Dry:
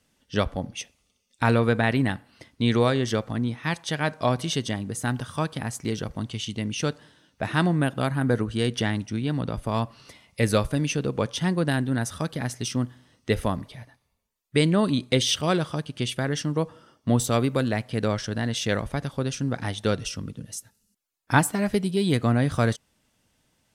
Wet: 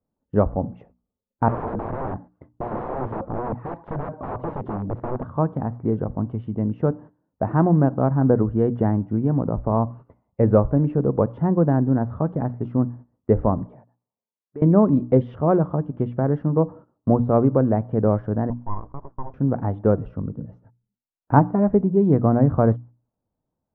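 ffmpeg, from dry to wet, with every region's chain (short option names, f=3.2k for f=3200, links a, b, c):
-filter_complex "[0:a]asettb=1/sr,asplit=3[a][b][c];[a]atrim=end=1.484[d];[b]atrim=start=1.48:end=5.27,asetpts=PTS-STARTPTS,afade=t=in:d=0.004:c=qsin,afade=t=out:st=3.786:d=0.004:c=qsin,aphaser=in_gain=1:out_gain=1:delay=3.8:decay=0.44:speed=2:type=triangular,aeval=exprs='(mod(16.8*val(0)+1,2)-1)/16.8':c=same[e];[c]atrim=start=5.266[f];[d][e]acrossfade=d=0.004:c1=hsin:c2=qsin[g];[g][f]acrossfade=d=0.004:c1=qsin:c2=hsin,asettb=1/sr,asplit=3[h][i][j];[h]atrim=end=13.684[k];[i]atrim=start=13.68:end=14.62,asetpts=PTS-STARTPTS,afade=t=in:d=0.004:c=qsin,afade=t=out:st=0.936:d=0.004:c=qsin,bandreject=f=2.1k:w=18,acompressor=threshold=-36dB:ratio=4:attack=3.2:release=140:knee=1:detection=peak,highpass=220,lowpass=3.9k[l];[j]atrim=start=14.616[m];[k][l]acrossfade=d=0.004:c1=hsin:c2=qsin[n];[n][m]acrossfade=d=0.004:c1=qsin:c2=hsin,asettb=1/sr,asplit=3[o][p][q];[o]atrim=end=18.504[r];[p]atrim=start=18.5:end=19.34,asetpts=PTS-STARTPTS,afade=t=in:d=0.004:c=qsin,afade=t=out:st=0.836:d=0.004:c=qsin,bandpass=f=500:t=q:w=3.4,aeval=exprs='abs(val(0))':c=same[s];[q]atrim=start=19.336[t];[r][s]acrossfade=d=0.004:c1=hsin:c2=qsin[u];[u][t]acrossfade=d=0.004:c1=qsin:c2=hsin,agate=range=-16dB:threshold=-45dB:ratio=16:detection=peak,lowpass=f=1k:w=0.5412,lowpass=f=1k:w=1.3066,bandreject=f=60:t=h:w=6,bandreject=f=120:t=h:w=6,bandreject=f=180:t=h:w=6,bandreject=f=240:t=h:w=6,bandreject=f=300:t=h:w=6,volume=6.5dB"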